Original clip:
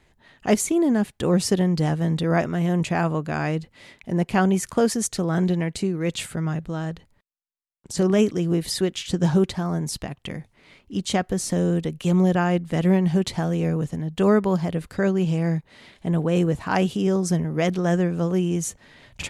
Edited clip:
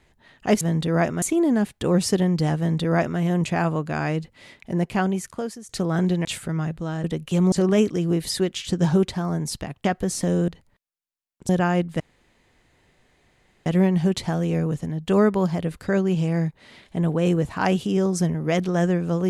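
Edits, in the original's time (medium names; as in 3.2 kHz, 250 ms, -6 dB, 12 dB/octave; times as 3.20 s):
1.97–2.58 s: copy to 0.61 s
4.10–5.08 s: fade out, to -20.5 dB
5.64–6.13 s: delete
6.92–7.93 s: swap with 11.77–12.25 s
10.26–11.14 s: delete
12.76 s: insert room tone 1.66 s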